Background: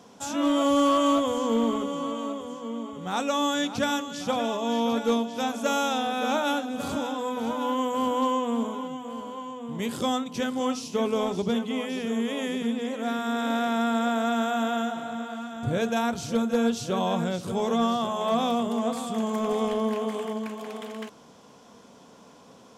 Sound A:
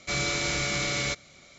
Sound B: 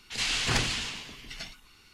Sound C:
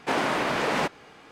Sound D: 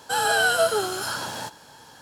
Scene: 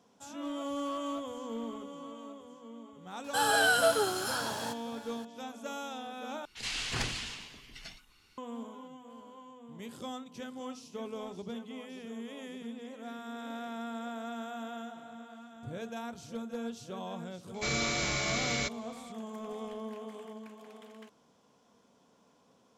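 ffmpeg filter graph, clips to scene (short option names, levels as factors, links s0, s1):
-filter_complex "[0:a]volume=0.188,asplit=2[s0][s1];[s0]atrim=end=6.454[s2];[2:a]atrim=end=1.93,asetpts=PTS-STARTPTS,volume=0.447[s3];[s1]atrim=start=8.376[s4];[4:a]atrim=end=2.01,asetpts=PTS-STARTPTS,volume=0.562,afade=t=in:d=0.004:c=hsin,afade=t=out:st=2.006:d=0.004:c=hsin,adelay=3240[s5];[1:a]atrim=end=1.58,asetpts=PTS-STARTPTS,volume=0.631,afade=t=in:d=0.004:c=hsin,afade=t=out:st=1.576:d=0.004:c=hsin,adelay=17540[s6];[s2][s3]acrossfade=d=0.004:c1=hsin:c2=hsin[s7];[s7][s4]acrossfade=d=0.004:c1=hsin:c2=hsin[s8];[s8][s5][s6]amix=inputs=3:normalize=0"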